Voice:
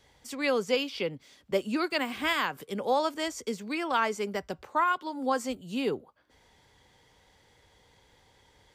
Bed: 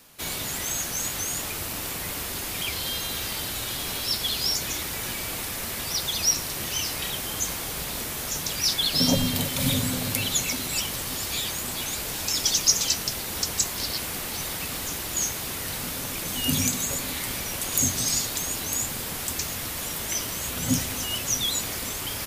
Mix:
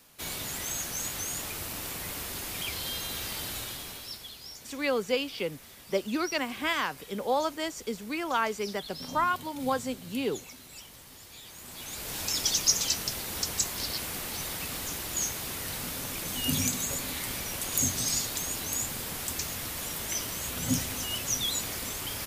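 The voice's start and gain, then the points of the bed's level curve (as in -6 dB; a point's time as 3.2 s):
4.40 s, -1.0 dB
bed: 3.57 s -5 dB
4.41 s -19.5 dB
11.4 s -19.5 dB
12.17 s -4 dB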